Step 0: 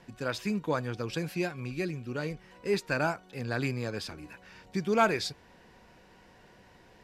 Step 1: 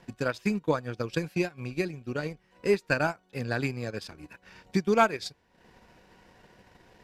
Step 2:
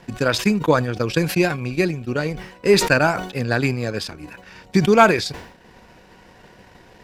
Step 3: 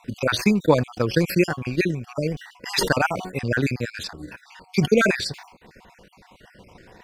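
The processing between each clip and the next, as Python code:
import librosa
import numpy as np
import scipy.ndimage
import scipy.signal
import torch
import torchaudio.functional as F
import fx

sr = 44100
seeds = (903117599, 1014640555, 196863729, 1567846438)

y1 = fx.transient(x, sr, attack_db=7, sustain_db=-11)
y2 = fx.sustainer(y1, sr, db_per_s=82.0)
y2 = F.gain(torch.from_numpy(y2), 9.0).numpy()
y3 = fx.spec_dropout(y2, sr, seeds[0], share_pct=44)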